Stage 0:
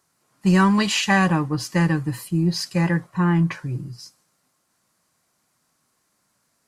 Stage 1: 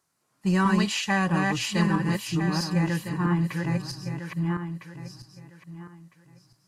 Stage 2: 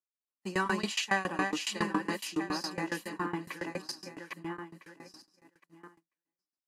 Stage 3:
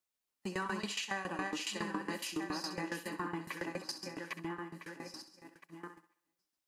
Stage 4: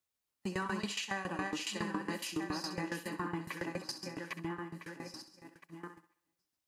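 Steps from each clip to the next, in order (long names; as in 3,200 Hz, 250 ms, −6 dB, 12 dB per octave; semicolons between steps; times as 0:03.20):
feedback delay that plays each chunk backwards 653 ms, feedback 43%, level −2 dB; level −6.5 dB
Butterworth high-pass 230 Hz 36 dB per octave; noise gate −53 dBFS, range −28 dB; shaped tremolo saw down 7.2 Hz, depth 95%
in parallel at +3 dB: brickwall limiter −26 dBFS, peak gain reduction 11.5 dB; on the sum: downward compressor 2 to 1, threshold −42 dBFS, peak gain reduction 12 dB; feedback echo with a high-pass in the loop 65 ms, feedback 45%, high-pass 250 Hz, level −12 dB; level −1.5 dB
parametric band 94 Hz +8.5 dB 1.5 octaves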